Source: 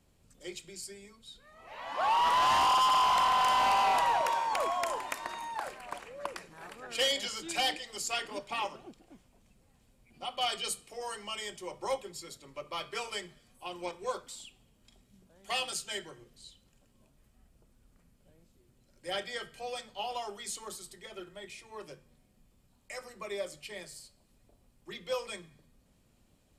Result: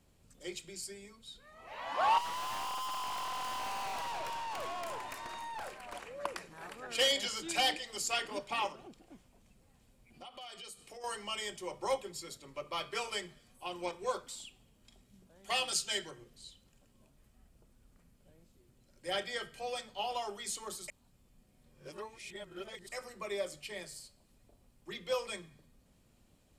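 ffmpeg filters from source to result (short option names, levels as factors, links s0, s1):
-filter_complex "[0:a]asettb=1/sr,asplit=3[s0][s1][s2];[s0]atrim=end=2.184[s3];[s1]atrim=start=2.18:end=5.95,asetpts=PTS-STARTPTS,afade=t=in:d=0.004:c=qsin,afade=t=out:st=3.766:d=0.004:c=qsin,aeval=exprs='(tanh(79.4*val(0)+0.4)-tanh(0.4))/79.4':c=same[s4];[s2]atrim=start=5.946[s5];[s3][s4]acrossfade=d=0.004:c1=hsin:c2=qsin[s6];[s6][s5]acrossfade=d=0.004:c1=qsin:c2=hsin,asettb=1/sr,asplit=3[s7][s8][s9];[s7]atrim=end=8.724[s10];[s8]atrim=start=8.72:end=11.04,asetpts=PTS-STARTPTS,afade=t=in:d=0.004:c=qsin,afade=t=out:st=2.316:d=0.004:c=qsin,acompressor=threshold=0.00501:ratio=6:attack=3.2:release=140:knee=1:detection=peak[s11];[s9]atrim=start=11.036[s12];[s10][s11]acrossfade=d=0.004:c1=hsin:c2=qsin[s13];[s13][s12]acrossfade=d=0.004:c1=qsin:c2=hsin,asettb=1/sr,asplit=3[s14][s15][s16];[s14]atrim=end=15.714[s17];[s15]atrim=start=15.71:end=16.11,asetpts=PTS-STARTPTS,afade=t=in:d=0.004:c=qsin,afade=t=out:st=0.396:d=0.004:c=qsin,equalizer=f=4900:t=o:w=1.5:g=6[s18];[s16]atrim=start=16.106[s19];[s17][s18]acrossfade=d=0.004:c1=hsin:c2=qsin[s20];[s20][s19]acrossfade=d=0.004:c1=qsin:c2=hsin,asplit=3[s21][s22][s23];[s21]atrim=end=20.882[s24];[s22]atrim=start=20.878:end=22.922,asetpts=PTS-STARTPTS,areverse[s25];[s23]atrim=start=22.918[s26];[s24][s25]acrossfade=d=0.004:c1=hsin:c2=hsin[s27];[s27][s26]acrossfade=d=0.004:c1=hsin:c2=hsin"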